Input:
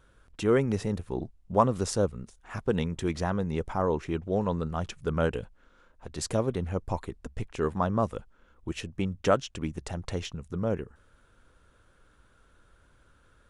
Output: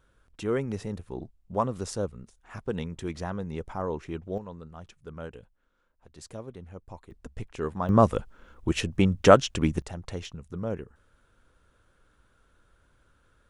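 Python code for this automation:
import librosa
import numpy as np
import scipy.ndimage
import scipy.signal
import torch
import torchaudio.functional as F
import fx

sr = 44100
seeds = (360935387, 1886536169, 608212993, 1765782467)

y = fx.gain(x, sr, db=fx.steps((0.0, -4.5), (4.38, -13.0), (7.11, -3.0), (7.89, 8.0), (9.82, -3.0)))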